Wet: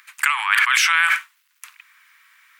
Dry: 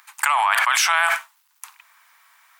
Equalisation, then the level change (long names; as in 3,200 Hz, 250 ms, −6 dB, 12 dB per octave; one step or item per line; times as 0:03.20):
high-pass filter 1,200 Hz 24 dB per octave
parametric band 2,200 Hz +8 dB 1.6 octaves
−3.0 dB